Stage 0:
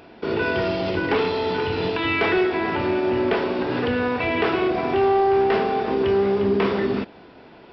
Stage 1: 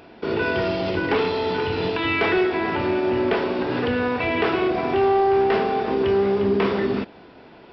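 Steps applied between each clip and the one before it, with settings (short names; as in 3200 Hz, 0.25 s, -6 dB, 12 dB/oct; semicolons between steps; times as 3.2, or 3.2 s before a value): nothing audible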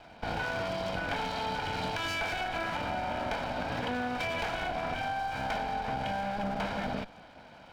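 minimum comb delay 1.3 ms; low shelf 150 Hz -4.5 dB; compressor, threshold -27 dBFS, peak gain reduction 8 dB; gain -3 dB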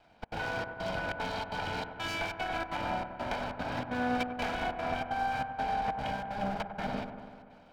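step gate "xxx.xxxx..xxxx." 188 bpm -60 dB; dark delay 97 ms, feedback 79%, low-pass 1600 Hz, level -7 dB; upward expander 1.5:1, over -50 dBFS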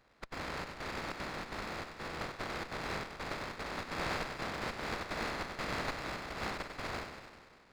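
spectral contrast lowered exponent 0.14; inverted band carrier 2800 Hz; running maximum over 9 samples; gain +1.5 dB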